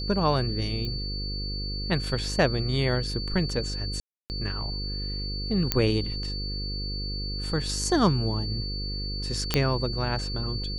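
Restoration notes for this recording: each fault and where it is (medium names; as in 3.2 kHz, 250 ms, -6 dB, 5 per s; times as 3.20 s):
buzz 50 Hz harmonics 10 -33 dBFS
whine 4.5 kHz -34 dBFS
0.85 s: pop -22 dBFS
4.00–4.30 s: dropout 299 ms
5.72 s: pop -5 dBFS
9.54 s: pop -6 dBFS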